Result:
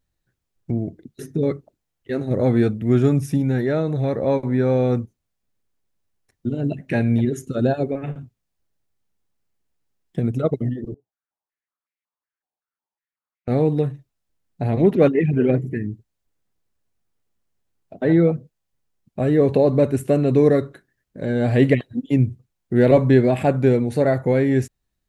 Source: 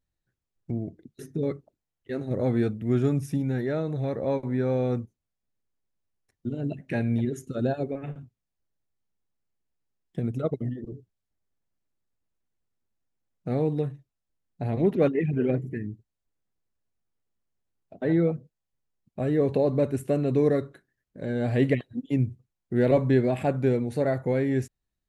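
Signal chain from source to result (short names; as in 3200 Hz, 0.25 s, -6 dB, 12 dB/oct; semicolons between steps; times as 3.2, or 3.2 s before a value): 10.94–13.48 stepped band-pass 5.4 Hz 770–2200 Hz; gain +7 dB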